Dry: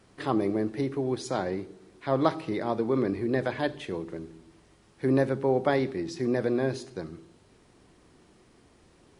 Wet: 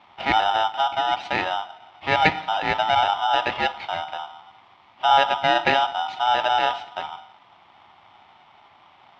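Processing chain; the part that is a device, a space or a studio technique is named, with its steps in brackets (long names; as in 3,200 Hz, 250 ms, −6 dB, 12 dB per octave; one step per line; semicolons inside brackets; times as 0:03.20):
high-shelf EQ 8,100 Hz +5 dB
ring modulator pedal into a guitar cabinet (ring modulator with a square carrier 1,100 Hz; loudspeaker in its box 79–3,500 Hz, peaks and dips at 94 Hz +4 dB, 470 Hz −8 dB, 850 Hz +6 dB, 1,500 Hz −10 dB, 2,200 Hz +5 dB)
level +6.5 dB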